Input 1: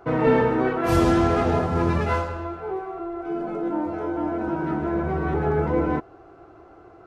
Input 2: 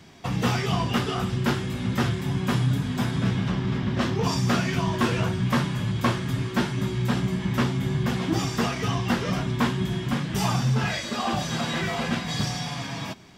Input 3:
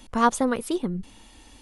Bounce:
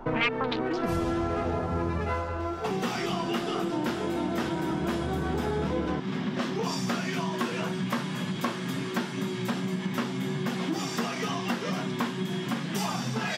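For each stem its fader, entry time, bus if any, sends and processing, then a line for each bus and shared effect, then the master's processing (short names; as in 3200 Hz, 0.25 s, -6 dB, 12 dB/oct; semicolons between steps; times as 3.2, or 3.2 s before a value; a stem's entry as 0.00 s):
+1.0 dB, 0.00 s, no send, dry
+1.5 dB, 2.40 s, no send, steep high-pass 160 Hz 36 dB/oct
+3.0 dB, 0.00 s, no send, self-modulated delay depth 0.95 ms; stepped low-pass 6.8 Hz 980–5100 Hz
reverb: off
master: compressor 4:1, threshold -27 dBFS, peak gain reduction 18.5 dB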